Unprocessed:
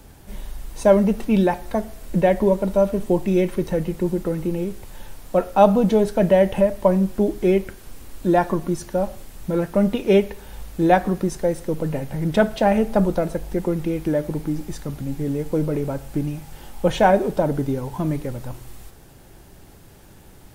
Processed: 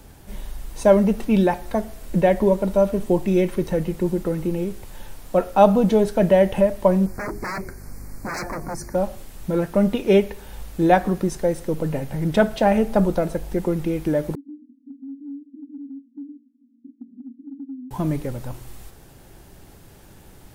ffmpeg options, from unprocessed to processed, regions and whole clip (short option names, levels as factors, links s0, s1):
-filter_complex "[0:a]asettb=1/sr,asplit=3[s0][s1][s2];[s0]atrim=end=7.064[s3];[s1]atrim=start=7.06:end=8.95,asetpts=PTS-STARTPTS,afade=t=in:d=0.004:c=qsin,afade=t=out:st=1.886:d=0.004:c=qsin,aeval=exprs='val(0)+0.0112*(sin(2*PI*50*n/s)+sin(2*PI*2*50*n/s)/2+sin(2*PI*3*50*n/s)/3+sin(2*PI*4*50*n/s)/4+sin(2*PI*5*50*n/s)/5)':c=same,aeval=exprs='0.0708*(abs(mod(val(0)/0.0708+3,4)-2)-1)':c=same,asuperstop=centerf=3200:order=8:qfactor=1.6[s4];[s2]atrim=start=8.946[s5];[s3][s4]acrossfade=d=0.004:c1=hsin:c2=qsin[s6];[s6][s5]acrossfade=d=0.004:c1=qsin:c2=hsin,asettb=1/sr,asplit=3[s7][s8][s9];[s7]atrim=end=14.354[s10];[s8]atrim=start=14.35:end=17.91,asetpts=PTS-STARTPTS,afade=t=in:d=0.004:c=qsin,afade=t=out:st=3.556:d=0.004:c=qsin,asuperpass=centerf=260:order=8:qfactor=4.9,acompressor=threshold=0.0224:ratio=3:attack=3.2:release=140:knee=1:detection=peak[s11];[s9]atrim=start=17.906[s12];[s10][s11]acrossfade=d=0.004:c1=hsin:c2=qsin[s13];[s13][s12]acrossfade=d=0.004:c1=qsin:c2=hsin"